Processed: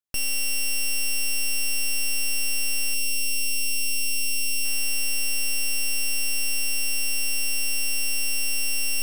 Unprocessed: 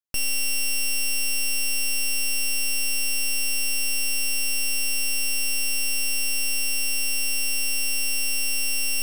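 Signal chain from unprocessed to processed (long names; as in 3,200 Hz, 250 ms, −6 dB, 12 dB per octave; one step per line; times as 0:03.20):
0:02.94–0:04.65: flat-topped bell 1,100 Hz −15.5 dB
delay with a low-pass on its return 179 ms, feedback 75%, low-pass 1,900 Hz, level −21.5 dB
level −1 dB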